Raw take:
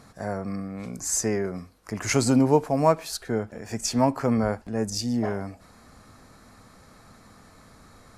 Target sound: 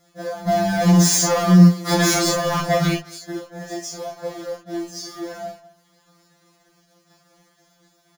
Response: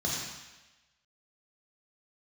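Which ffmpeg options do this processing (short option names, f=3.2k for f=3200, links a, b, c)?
-filter_complex "[0:a]highpass=f=170:w=0.5412,highpass=f=170:w=1.3066,acompressor=threshold=-35dB:ratio=20,asplit=3[a][b][c];[a]afade=t=out:st=0.47:d=0.02[d];[b]aeval=exprs='0.075*sin(PI/2*6.31*val(0)/0.075)':c=same,afade=t=in:st=0.47:d=0.02,afade=t=out:st=2.92:d=0.02[e];[c]afade=t=in:st=2.92:d=0.02[f];[d][e][f]amix=inputs=3:normalize=0,acrusher=bits=3:mode=log:mix=0:aa=0.000001,aeval=exprs='sgn(val(0))*max(abs(val(0))-0.00422,0)':c=same,asplit=2[g][h];[h]adelay=210,highpass=300,lowpass=3.4k,asoftclip=type=hard:threshold=-29.5dB,volume=-18dB[i];[g][i]amix=inputs=2:normalize=0[j];[1:a]atrim=start_sample=2205,atrim=end_sample=3528[k];[j][k]afir=irnorm=-1:irlink=0,alimiter=level_in=9.5dB:limit=-1dB:release=50:level=0:latency=1,afftfilt=real='re*2.83*eq(mod(b,8),0)':imag='im*2.83*eq(mod(b,8),0)':win_size=2048:overlap=0.75,volume=-4.5dB"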